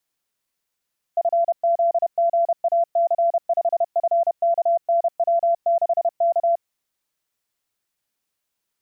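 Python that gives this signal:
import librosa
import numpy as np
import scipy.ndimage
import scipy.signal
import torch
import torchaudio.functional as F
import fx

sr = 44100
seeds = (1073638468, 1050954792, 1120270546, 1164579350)

y = fx.morse(sr, text='FZGAC5FKNW6K', wpm=31, hz=680.0, level_db=-15.0)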